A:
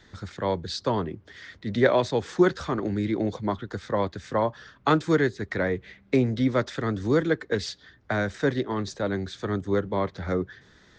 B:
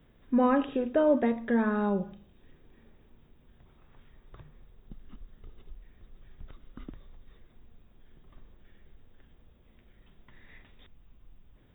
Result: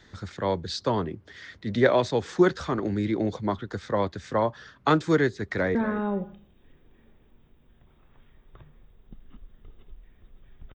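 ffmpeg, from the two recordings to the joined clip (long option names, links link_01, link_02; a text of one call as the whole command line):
ffmpeg -i cue0.wav -i cue1.wav -filter_complex "[0:a]apad=whole_dur=10.74,atrim=end=10.74,atrim=end=5.752[link_01];[1:a]atrim=start=1.538:end=6.53[link_02];[link_01][link_02]acrossfade=duration=0.004:curve1=hsin:curve2=hsin,asplit=2[link_03][link_04];[link_04]afade=type=in:start_time=5.33:duration=0.01,afade=type=out:start_time=5.75:duration=0.01,aecho=0:1:240|480:0.211349|0.0317023[link_05];[link_03][link_05]amix=inputs=2:normalize=0" out.wav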